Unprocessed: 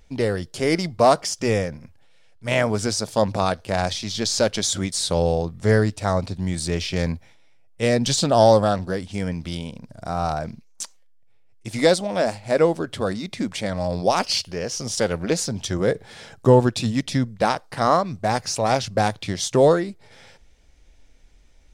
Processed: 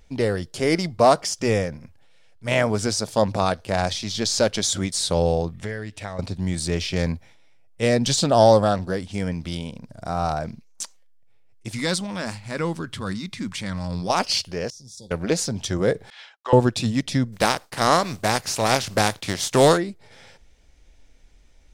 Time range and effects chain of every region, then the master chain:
5.52–6.19 s: high-order bell 2.4 kHz +8 dB 1.3 oct + transient shaper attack +7 dB, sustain -1 dB + compression 2.5:1, threshold -35 dBFS
11.72–14.10 s: transient shaper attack -3 dB, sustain +2 dB + FFT filter 190 Hz 0 dB, 680 Hz -14 dB, 1 kHz -1 dB
14.70–15.11 s: brick-wall FIR band-stop 1–3.3 kHz + amplifier tone stack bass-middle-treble 6-0-2 + doubling 15 ms -10.5 dB
16.10–16.53 s: Chebyshev band-pass 850–3200 Hz + expander -42 dBFS + tilt EQ +3.5 dB/octave
17.32–19.76 s: spectral contrast reduction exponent 0.64 + expander -43 dBFS
whole clip: none

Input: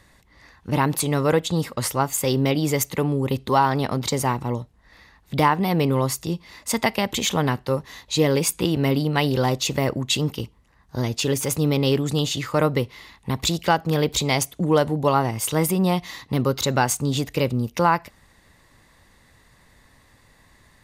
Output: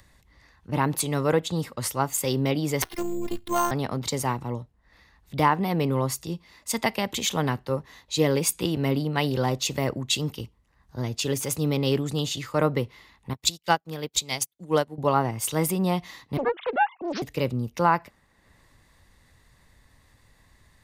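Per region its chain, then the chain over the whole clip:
2.82–3.71 s: tone controls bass +5 dB, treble +4 dB + robot voice 346 Hz + careless resampling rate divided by 6×, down none, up hold
13.33–14.98 s: treble shelf 2.2 kHz +5.5 dB + upward expansion 2.5:1, over -39 dBFS
16.37–17.22 s: formants replaced by sine waves + loudspeaker Doppler distortion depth 0.99 ms
whole clip: upward compressor, threshold -35 dBFS; three bands expanded up and down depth 40%; trim -4 dB

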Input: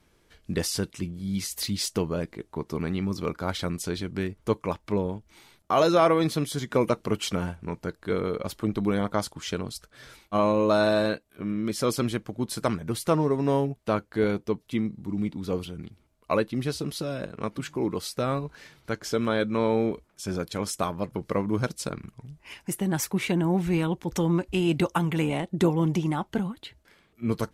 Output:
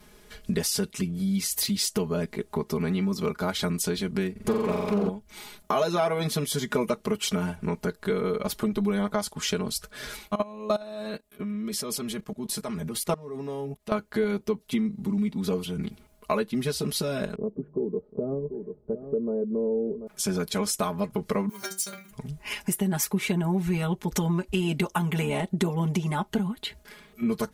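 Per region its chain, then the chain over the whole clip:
4.31–5.09 s: flutter echo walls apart 7.6 m, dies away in 1.2 s + loudspeaker Doppler distortion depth 0.42 ms
10.35–13.92 s: band-stop 1.5 kHz, Q 16 + level held to a coarse grid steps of 21 dB
17.35–20.07 s: four-pole ladder low-pass 540 Hz, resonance 45% + delay 738 ms -13.5 dB
21.49–22.11 s: companding laws mixed up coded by A + tilt EQ +4 dB/octave + inharmonic resonator 190 Hz, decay 0.27 s, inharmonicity 0.002
whole clip: treble shelf 10 kHz +8 dB; comb 4.8 ms, depth 100%; compression 3:1, threshold -34 dBFS; trim +7 dB

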